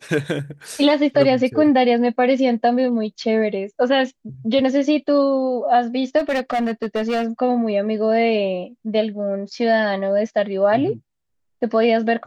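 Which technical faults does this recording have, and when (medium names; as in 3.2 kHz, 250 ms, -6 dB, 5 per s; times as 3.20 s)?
6.18–7.25 s: clipped -17 dBFS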